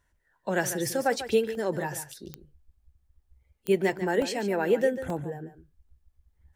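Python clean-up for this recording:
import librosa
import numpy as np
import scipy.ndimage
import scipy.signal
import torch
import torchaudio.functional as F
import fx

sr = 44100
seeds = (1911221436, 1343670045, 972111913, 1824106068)

y = fx.fix_declick_ar(x, sr, threshold=10.0)
y = fx.fix_interpolate(y, sr, at_s=(1.55, 4.22, 5.1, 5.89), length_ms=1.8)
y = fx.fix_echo_inverse(y, sr, delay_ms=144, level_db=-12.0)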